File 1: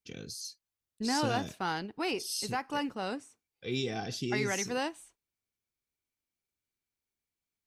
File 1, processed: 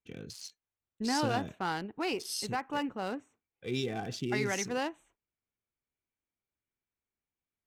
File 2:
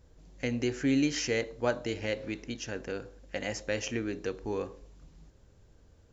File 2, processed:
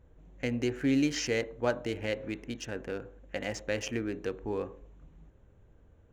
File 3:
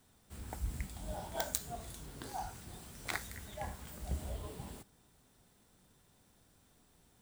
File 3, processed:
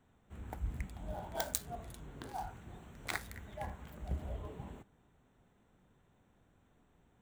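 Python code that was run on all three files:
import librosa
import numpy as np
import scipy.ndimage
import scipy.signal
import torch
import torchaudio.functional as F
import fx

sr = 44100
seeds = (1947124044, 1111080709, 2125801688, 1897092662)

y = fx.wiener(x, sr, points=9)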